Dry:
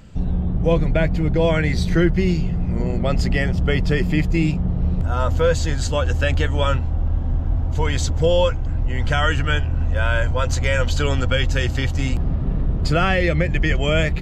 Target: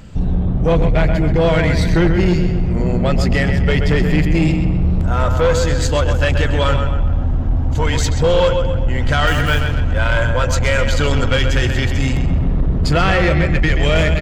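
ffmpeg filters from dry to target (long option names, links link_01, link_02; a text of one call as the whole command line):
ffmpeg -i in.wav -filter_complex "[0:a]asettb=1/sr,asplit=3[link_01][link_02][link_03];[link_01]atrim=end=9.274[link_04];[link_02]atrim=start=9.27:end=9.8,asetpts=PTS-STARTPTS,afade=type=in:duration=0.004:curve=qsin,afade=type=out:start_time=0.526:duration=0.004:curve=qsin,acrusher=bits=5:mix=0:aa=0.5[link_05];[link_03]atrim=start=9.796[link_06];[link_04][link_05]acrossfade=duration=0.004:curve1=hsin:curve2=qsin[link_07];[link_07][link_06]acrossfade=duration=0.004:curve1=qsin:curve2=hsin,asplit=2[link_08][link_09];[link_09]adelay=130,lowpass=frequency=4100:poles=1,volume=-7dB,asplit=2[link_10][link_11];[link_11]adelay=130,lowpass=frequency=4100:poles=1,volume=0.52,asplit=2[link_12][link_13];[link_13]adelay=130,lowpass=frequency=4100:poles=1,volume=0.52,asplit=2[link_14][link_15];[link_15]adelay=130,lowpass=frequency=4100:poles=1,volume=0.52,asplit=2[link_16][link_17];[link_17]adelay=130,lowpass=frequency=4100:poles=1,volume=0.52,asplit=2[link_18][link_19];[link_19]adelay=130,lowpass=frequency=4100:poles=1,volume=0.52[link_20];[link_08][link_10][link_12][link_14][link_16][link_18][link_20]amix=inputs=7:normalize=0,asoftclip=type=tanh:threshold=-14dB,volume=6dB" out.wav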